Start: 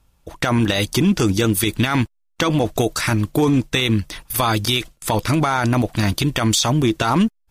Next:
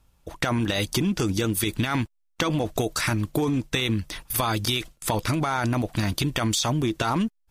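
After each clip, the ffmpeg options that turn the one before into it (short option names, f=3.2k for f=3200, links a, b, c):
-af "acompressor=threshold=-18dB:ratio=6,volume=-2.5dB"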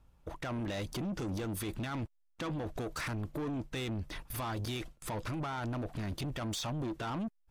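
-af "highshelf=f=2.6k:g=-11.5,alimiter=limit=-22.5dB:level=0:latency=1:release=18,asoftclip=type=tanh:threshold=-31.5dB,volume=-1.5dB"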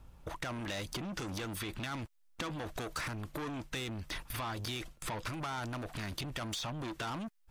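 -filter_complex "[0:a]acrossover=split=1000|4900[a][b][c];[a]acompressor=threshold=-51dB:ratio=4[d];[b]acompressor=threshold=-49dB:ratio=4[e];[c]acompressor=threshold=-56dB:ratio=4[f];[d][e][f]amix=inputs=3:normalize=0,volume=8.5dB"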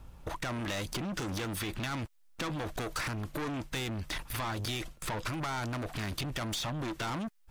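-af "aeval=exprs='clip(val(0),-1,0.01)':c=same,volume=5dB"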